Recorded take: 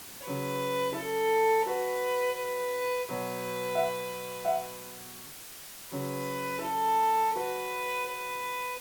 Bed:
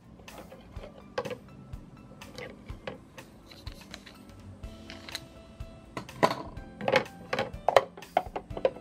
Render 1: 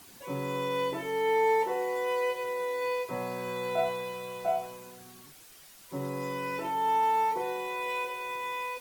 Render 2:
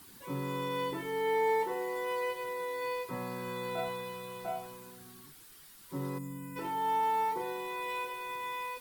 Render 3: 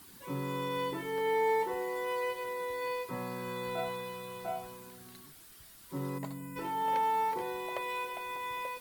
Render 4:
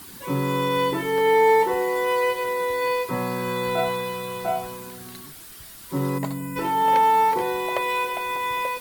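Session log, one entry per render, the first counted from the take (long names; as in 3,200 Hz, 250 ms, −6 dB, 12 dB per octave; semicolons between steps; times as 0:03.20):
broadband denoise 9 dB, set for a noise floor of −46 dBFS
0:06.18–0:06.56: gain on a spectral selection 300–6,600 Hz −15 dB; graphic EQ with 15 bands 630 Hz −11 dB, 2,500 Hz −5 dB, 6,300 Hz −6 dB
mix in bed −22 dB
level +12 dB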